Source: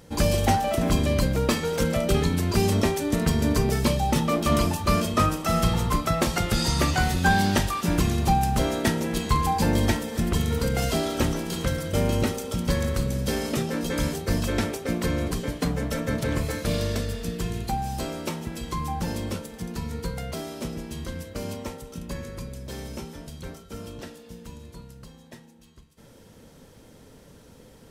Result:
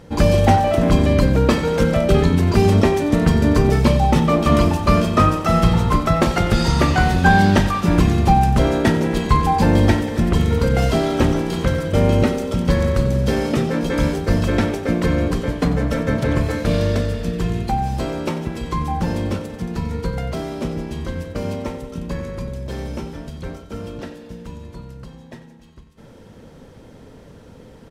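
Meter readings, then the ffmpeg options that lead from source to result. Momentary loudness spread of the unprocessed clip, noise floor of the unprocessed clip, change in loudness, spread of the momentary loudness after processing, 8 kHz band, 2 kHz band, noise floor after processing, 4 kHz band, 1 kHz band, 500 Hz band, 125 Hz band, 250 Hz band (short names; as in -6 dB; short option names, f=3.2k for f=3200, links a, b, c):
14 LU, -51 dBFS, +7.5 dB, 14 LU, -2.0 dB, +6.0 dB, -43 dBFS, +2.0 dB, +7.0 dB, +8.0 dB, +8.0 dB, +8.0 dB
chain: -filter_complex "[0:a]lowpass=f=2.3k:p=1,asplit=2[a][b];[b]aecho=0:1:92|184|276|368|460|552:0.2|0.12|0.0718|0.0431|0.0259|0.0155[c];[a][c]amix=inputs=2:normalize=0,volume=7.5dB"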